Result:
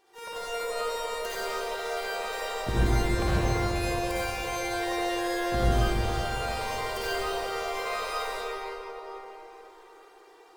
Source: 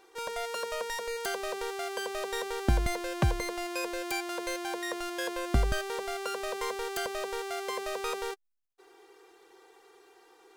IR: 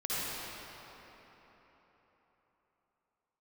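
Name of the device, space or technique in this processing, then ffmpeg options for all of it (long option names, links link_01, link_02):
shimmer-style reverb: -filter_complex "[0:a]asettb=1/sr,asplit=3[link_01][link_02][link_03];[link_01]atrim=end=6.754[link_04];[link_02]atrim=start=6.75:end=7.75,asetpts=PTS-STARTPTS,afade=type=in:duration=0.004:curve=qsin,afade=type=out:start_time=0.996:duration=0.004:curve=qsin,aecho=1:1:5.8:0.36,atrim=end_sample=44100[link_05];[link_03]atrim=start=7.746[link_06];[link_04][link_05]acrossfade=duration=0.004:curve1=hsin:curve2=qsin[link_07];[link_07][link_06]acrossfade=duration=0.004:curve1=qsin:curve2=hsin,asplit=2[link_08][link_09];[link_09]asetrate=88200,aresample=44100,atempo=0.5,volume=-9dB[link_10];[link_08][link_10]amix=inputs=2:normalize=0[link_11];[1:a]atrim=start_sample=2205[link_12];[link_11][link_12]afir=irnorm=-1:irlink=0,volume=-4.5dB"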